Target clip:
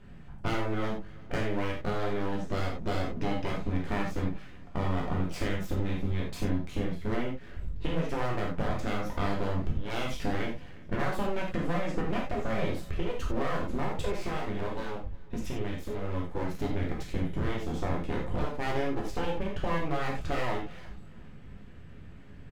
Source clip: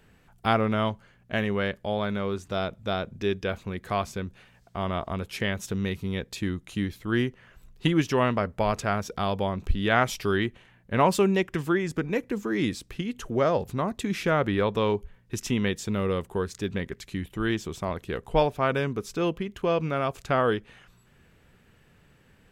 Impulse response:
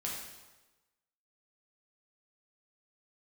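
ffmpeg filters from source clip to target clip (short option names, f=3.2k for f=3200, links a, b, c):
-filter_complex "[0:a]aemphasis=mode=reproduction:type=bsi,acompressor=threshold=-26dB:ratio=12,asplit=3[a][b][c];[a]afade=t=out:st=14.16:d=0.02[d];[b]flanger=delay=8.4:depth=5.7:regen=-18:speed=1.1:shape=triangular,afade=t=in:st=14.16:d=0.02,afade=t=out:st=16.35:d=0.02[e];[c]afade=t=in:st=16.35:d=0.02[f];[d][e][f]amix=inputs=3:normalize=0,aeval=exprs='abs(val(0))':c=same,aecho=1:1:359|718:0.0668|0.0247[g];[1:a]atrim=start_sample=2205,afade=t=out:st=0.15:d=0.01,atrim=end_sample=7056[h];[g][h]afir=irnorm=-1:irlink=0,volume=2.5dB"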